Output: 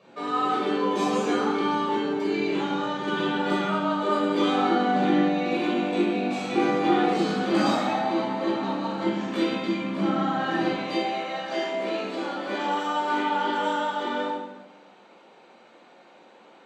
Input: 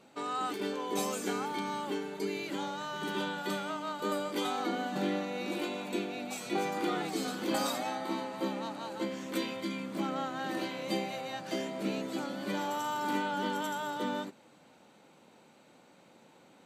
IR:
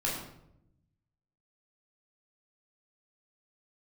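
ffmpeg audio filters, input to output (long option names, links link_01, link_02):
-filter_complex "[0:a]asetnsamples=nb_out_samples=441:pad=0,asendcmd='10.71 highpass f 410',highpass=130,lowpass=4400[link_01];[1:a]atrim=start_sample=2205,asetrate=29988,aresample=44100[link_02];[link_01][link_02]afir=irnorm=-1:irlink=0"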